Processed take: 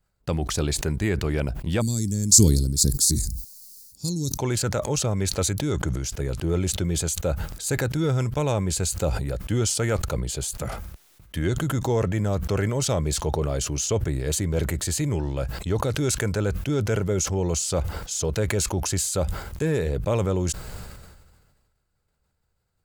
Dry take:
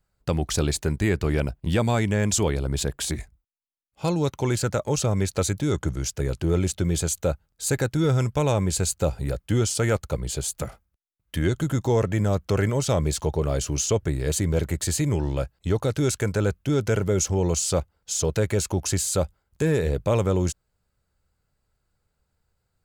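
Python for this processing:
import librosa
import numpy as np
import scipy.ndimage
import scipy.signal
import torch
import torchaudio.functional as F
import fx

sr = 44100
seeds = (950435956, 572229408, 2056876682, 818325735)

y = fx.curve_eq(x, sr, hz=(280.0, 690.0, 3000.0, 4400.0, 14000.0), db=(0, -24, -21, 11, 14), at=(1.8, 4.37), fade=0.02)
y = fx.sustainer(y, sr, db_per_s=37.0)
y = y * librosa.db_to_amplitude(-2.0)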